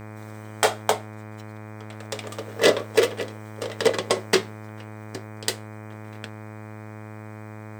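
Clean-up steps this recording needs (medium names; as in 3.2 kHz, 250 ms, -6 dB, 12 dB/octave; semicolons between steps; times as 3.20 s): de-hum 107.2 Hz, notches 23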